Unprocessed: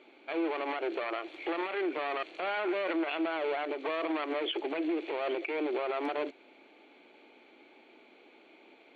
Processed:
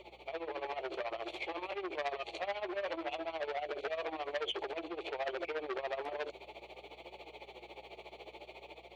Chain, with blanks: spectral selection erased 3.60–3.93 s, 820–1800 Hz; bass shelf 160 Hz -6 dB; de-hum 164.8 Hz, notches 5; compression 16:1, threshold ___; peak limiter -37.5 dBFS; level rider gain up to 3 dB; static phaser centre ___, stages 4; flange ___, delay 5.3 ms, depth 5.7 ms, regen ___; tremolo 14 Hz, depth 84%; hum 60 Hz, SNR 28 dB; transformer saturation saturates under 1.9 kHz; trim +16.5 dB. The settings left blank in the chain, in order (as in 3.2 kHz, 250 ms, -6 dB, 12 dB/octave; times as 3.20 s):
-36 dBFS, 640 Hz, 0.56 Hz, +50%